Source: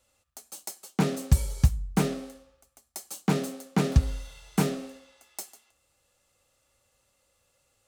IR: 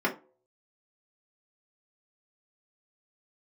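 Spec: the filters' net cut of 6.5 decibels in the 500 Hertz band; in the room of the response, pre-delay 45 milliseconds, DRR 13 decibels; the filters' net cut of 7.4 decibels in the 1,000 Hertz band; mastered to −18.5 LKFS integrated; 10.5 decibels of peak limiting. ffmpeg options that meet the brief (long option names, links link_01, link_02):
-filter_complex "[0:a]equalizer=frequency=500:width_type=o:gain=-7,equalizer=frequency=1000:width_type=o:gain=-7.5,alimiter=limit=-18dB:level=0:latency=1,asplit=2[link_01][link_02];[1:a]atrim=start_sample=2205,adelay=45[link_03];[link_02][link_03]afir=irnorm=-1:irlink=0,volume=-24.5dB[link_04];[link_01][link_04]amix=inputs=2:normalize=0,volume=15.5dB"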